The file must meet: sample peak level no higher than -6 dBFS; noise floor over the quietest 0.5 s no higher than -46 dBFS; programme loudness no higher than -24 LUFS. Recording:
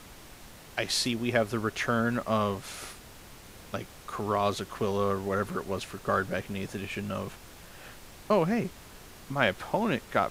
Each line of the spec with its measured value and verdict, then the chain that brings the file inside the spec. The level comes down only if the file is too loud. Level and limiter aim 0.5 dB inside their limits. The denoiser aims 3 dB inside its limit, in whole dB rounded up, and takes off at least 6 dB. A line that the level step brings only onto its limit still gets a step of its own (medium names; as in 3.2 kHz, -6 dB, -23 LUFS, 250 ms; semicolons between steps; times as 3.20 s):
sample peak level -9.0 dBFS: pass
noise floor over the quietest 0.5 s -49 dBFS: pass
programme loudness -30.0 LUFS: pass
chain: none needed